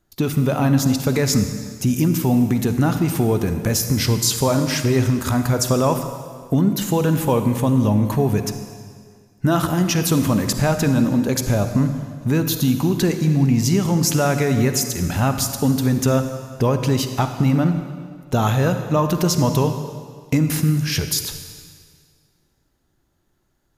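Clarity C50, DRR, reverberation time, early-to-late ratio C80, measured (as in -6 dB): 8.0 dB, 7.5 dB, 1.9 s, 9.0 dB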